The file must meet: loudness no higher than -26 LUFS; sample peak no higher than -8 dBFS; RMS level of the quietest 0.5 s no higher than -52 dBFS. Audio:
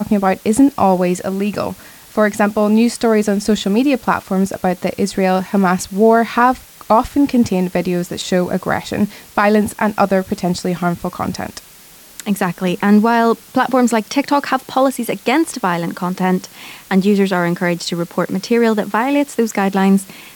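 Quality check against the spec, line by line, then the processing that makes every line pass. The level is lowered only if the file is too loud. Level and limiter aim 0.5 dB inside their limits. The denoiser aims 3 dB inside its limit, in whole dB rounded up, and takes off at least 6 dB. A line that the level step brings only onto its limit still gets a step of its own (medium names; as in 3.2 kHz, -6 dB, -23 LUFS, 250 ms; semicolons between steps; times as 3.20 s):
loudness -16.0 LUFS: fail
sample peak -2.5 dBFS: fail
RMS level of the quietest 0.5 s -42 dBFS: fail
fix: trim -10.5 dB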